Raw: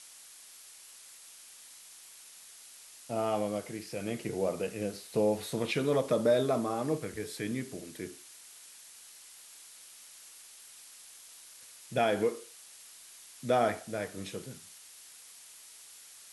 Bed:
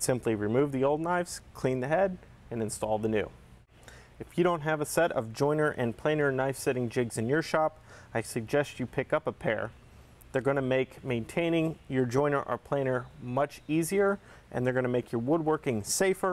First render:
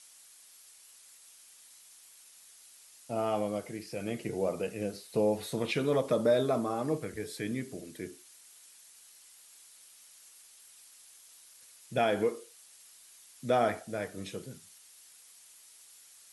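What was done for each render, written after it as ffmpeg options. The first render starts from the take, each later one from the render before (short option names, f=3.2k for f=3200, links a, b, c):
-af "afftdn=nr=6:nf=-53"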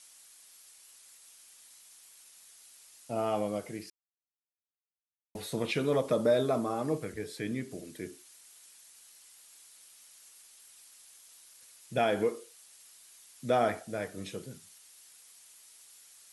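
-filter_complex "[0:a]asettb=1/sr,asplit=3[a][b][c];[a]atrim=end=7.134[d];[b]atrim=start=7.13:end=7.71,asetpts=PTS-STARTPTS,afade=t=in:d=0.004:c=qsin,afade=t=out:st=0.576:d=0.004:c=qsin,highshelf=f=7.4k:g=-5.5[e];[c]atrim=start=7.706[f];[d][e]acrossfade=d=0.004:c1=hsin:c2=qsin[g];[g][f]acrossfade=d=0.004:c1=qsin:c2=hsin,asplit=3[h][i][j];[h]atrim=end=3.9,asetpts=PTS-STARTPTS,afade=t=out:st=3.896:d=0.004:c=hsin[k];[i]atrim=start=3.9:end=5.35,asetpts=PTS-STARTPTS,volume=0[l];[j]atrim=start=5.35,asetpts=PTS-STARTPTS,afade=t=in:d=0.004:c=hsin[m];[k][l][m]concat=n=3:v=0:a=1"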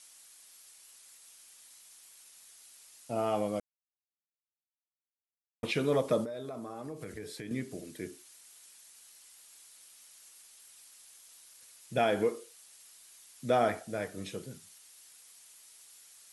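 -filter_complex "[0:a]asettb=1/sr,asplit=3[a][b][c];[a]atrim=end=6.244[d];[b]atrim=start=6.24:end=7.51,asetpts=PTS-STARTPTS,afade=t=in:d=0.004:c=qsin,afade=t=out:st=1.266:d=0.004:c=qsin,acompressor=threshold=-37dB:ratio=8:attack=3.2:release=140:knee=1:detection=peak[e];[c]atrim=start=7.506[f];[d][e]acrossfade=d=0.004:c1=hsin:c2=qsin[g];[g][f]acrossfade=d=0.004:c1=qsin:c2=hsin,asplit=3[h][i][j];[h]atrim=end=3.6,asetpts=PTS-STARTPTS,afade=t=out:st=3.596:d=0.004:c=hsin[k];[i]atrim=start=3.6:end=5.63,asetpts=PTS-STARTPTS,volume=0[l];[j]atrim=start=5.63,asetpts=PTS-STARTPTS,afade=t=in:d=0.004:c=hsin[m];[k][l][m]concat=n=3:v=0:a=1"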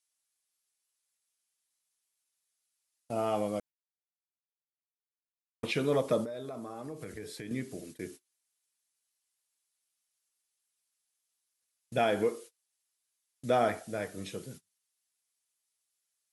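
-af "agate=range=-27dB:threshold=-47dB:ratio=16:detection=peak"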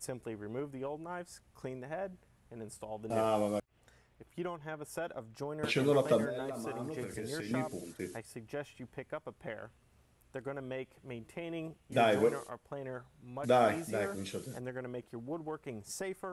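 -filter_complex "[1:a]volume=-13.5dB[a];[0:a][a]amix=inputs=2:normalize=0"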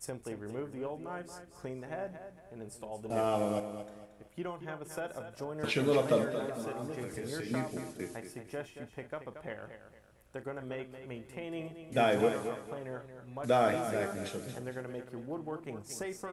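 -filter_complex "[0:a]asplit=2[a][b];[b]adelay=39,volume=-13dB[c];[a][c]amix=inputs=2:normalize=0,aecho=1:1:228|456|684|912:0.335|0.117|0.041|0.0144"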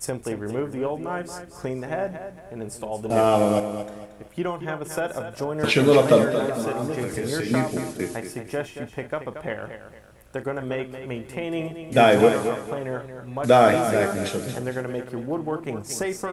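-af "volume=12dB"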